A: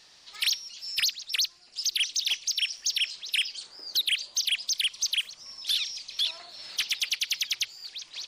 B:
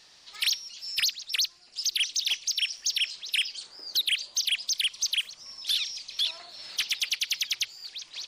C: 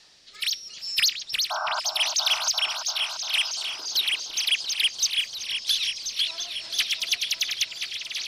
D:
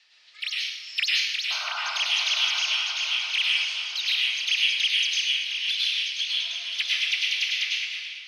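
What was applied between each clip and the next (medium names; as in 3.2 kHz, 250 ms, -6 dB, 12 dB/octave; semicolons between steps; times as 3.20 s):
no audible change
rotary cabinet horn 0.75 Hz, later 6.3 Hz, at 4.21 s; painted sound noise, 1.50–1.80 s, 600–1600 Hz -33 dBFS; delay with an opening low-pass 344 ms, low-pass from 750 Hz, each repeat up 2 oct, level -3 dB; trim +4.5 dB
fade out at the end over 0.53 s; band-pass filter 2.4 kHz, Q 1.9; plate-style reverb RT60 1.2 s, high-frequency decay 0.75×, pre-delay 85 ms, DRR -5 dB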